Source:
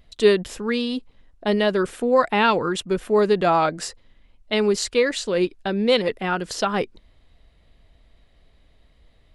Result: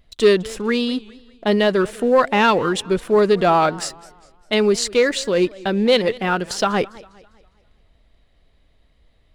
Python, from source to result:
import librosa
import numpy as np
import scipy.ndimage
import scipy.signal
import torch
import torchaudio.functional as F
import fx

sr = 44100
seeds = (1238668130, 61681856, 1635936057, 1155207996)

y = fx.leveller(x, sr, passes=1)
y = fx.echo_warbled(y, sr, ms=201, feedback_pct=42, rate_hz=2.8, cents=202, wet_db=-21.5)